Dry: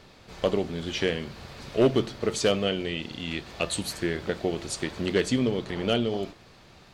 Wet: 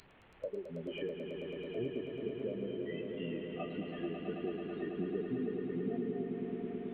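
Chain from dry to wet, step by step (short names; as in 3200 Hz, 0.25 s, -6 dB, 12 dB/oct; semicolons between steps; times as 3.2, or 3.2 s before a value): delta modulation 16 kbps, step -33.5 dBFS; compressor 6:1, threshold -33 dBFS, peak gain reduction 15 dB; spectral noise reduction 20 dB; swelling echo 0.109 s, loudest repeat 5, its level -8 dB; gain -2 dB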